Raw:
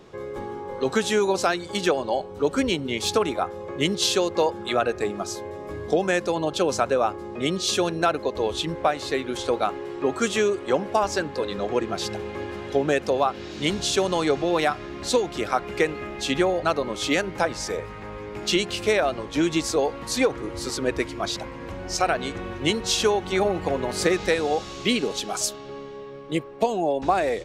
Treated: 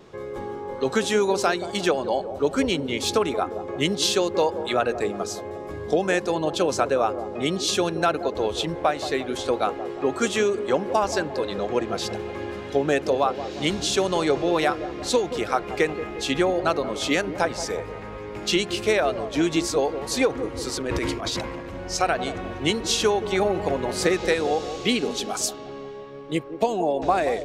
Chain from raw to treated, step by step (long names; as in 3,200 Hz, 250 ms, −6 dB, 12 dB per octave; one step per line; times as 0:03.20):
0:20.76–0:21.76: transient designer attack −11 dB, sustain +10 dB
pitch vibrato 1.5 Hz 9.8 cents
delay with a band-pass on its return 177 ms, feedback 51%, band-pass 430 Hz, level −10 dB